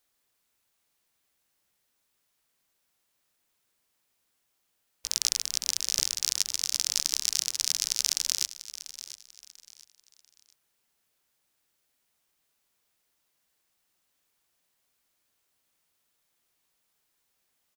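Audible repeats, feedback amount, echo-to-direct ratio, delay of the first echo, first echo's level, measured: 3, 31%, -14.0 dB, 692 ms, -14.5 dB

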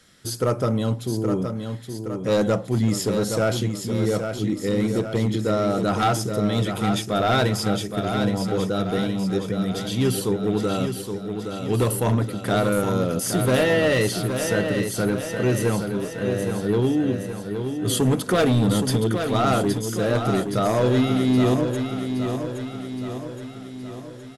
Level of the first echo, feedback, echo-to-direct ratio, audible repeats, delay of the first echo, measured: -7.0 dB, 56%, -5.5 dB, 6, 819 ms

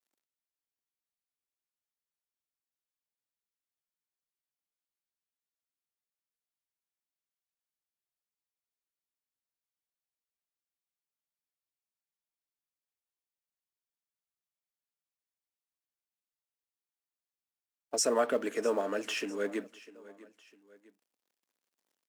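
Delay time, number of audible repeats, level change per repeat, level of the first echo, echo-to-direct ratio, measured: 651 ms, 2, -7.0 dB, -19.5 dB, -18.5 dB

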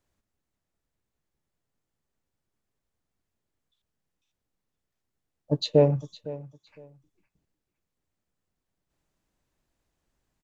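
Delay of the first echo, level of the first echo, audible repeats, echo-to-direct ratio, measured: 509 ms, -17.5 dB, 2, -17.5 dB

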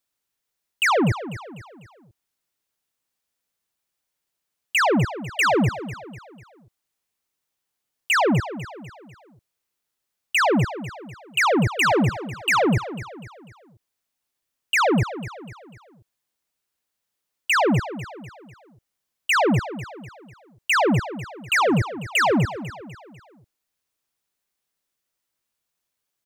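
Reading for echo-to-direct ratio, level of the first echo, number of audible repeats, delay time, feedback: -12.5 dB, -13.5 dB, 4, 248 ms, 44%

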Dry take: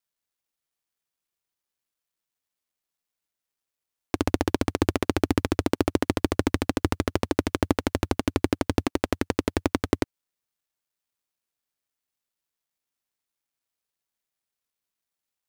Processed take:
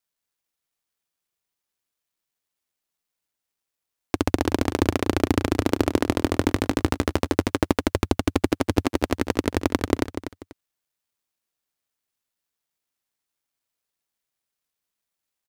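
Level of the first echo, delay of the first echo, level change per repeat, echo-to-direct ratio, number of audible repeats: -10.0 dB, 244 ms, -12.0 dB, -9.5 dB, 2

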